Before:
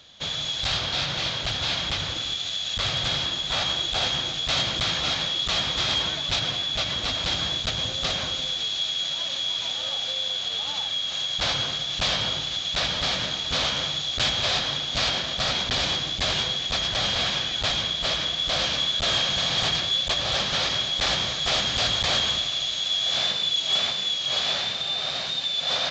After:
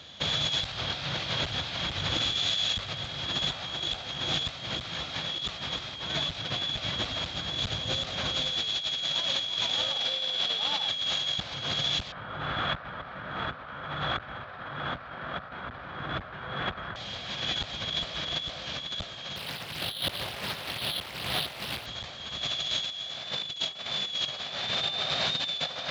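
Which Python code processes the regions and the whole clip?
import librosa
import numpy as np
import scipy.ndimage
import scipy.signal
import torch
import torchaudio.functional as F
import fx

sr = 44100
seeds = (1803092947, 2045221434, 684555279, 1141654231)

y = fx.chain(x, sr, fx.highpass(hz=160.0, slope=12),
    fx.notch(hz=6600.0, q=15.0), at=(9.97, 10.89))
y = fx.chain(y, sr, fx.lowpass_res(hz=1400.0, q=3.1),
    fx.env_flatten(amount_pct=50), at=(12.12, 16.96))
y = fx.chain(y, sr, fx.highpass(hz=53.0, slope=24),
    fx.resample_bad(factor=6, down='none', up='hold'),
    fx.doppler_dist(depth_ms=0.81), at=(19.36, 21.86))
y = scipy.signal.sosfilt(scipy.signal.butter(2, 59.0, 'highpass', fs=sr, output='sos'), y)
y = fx.bass_treble(y, sr, bass_db=2, treble_db=-6)
y = fx.over_compress(y, sr, threshold_db=-32.0, ratio=-0.5)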